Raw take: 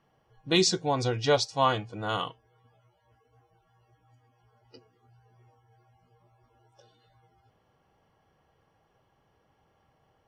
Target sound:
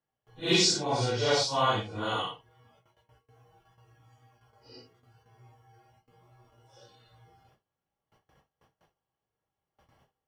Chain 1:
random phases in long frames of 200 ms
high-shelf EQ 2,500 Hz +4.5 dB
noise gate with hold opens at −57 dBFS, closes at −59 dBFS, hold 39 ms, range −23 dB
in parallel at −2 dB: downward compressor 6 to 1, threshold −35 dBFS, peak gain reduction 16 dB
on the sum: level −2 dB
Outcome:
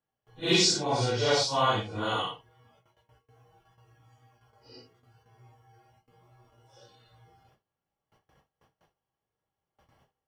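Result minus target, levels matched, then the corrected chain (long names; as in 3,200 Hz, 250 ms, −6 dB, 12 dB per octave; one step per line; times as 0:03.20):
downward compressor: peak gain reduction −7.5 dB
random phases in long frames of 200 ms
high-shelf EQ 2,500 Hz +4.5 dB
noise gate with hold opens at −57 dBFS, closes at −59 dBFS, hold 39 ms, range −23 dB
in parallel at −2 dB: downward compressor 6 to 1, threshold −44 dBFS, peak gain reduction 23.5 dB
on the sum: level −2 dB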